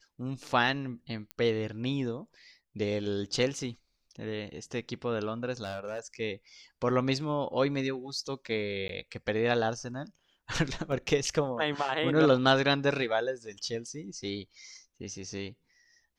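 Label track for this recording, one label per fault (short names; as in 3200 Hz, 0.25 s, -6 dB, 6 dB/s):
1.310000	1.310000	pop -22 dBFS
5.640000	5.990000	clipped -31.5 dBFS
8.880000	8.890000	gap 12 ms
10.920000	10.920000	gap 2.1 ms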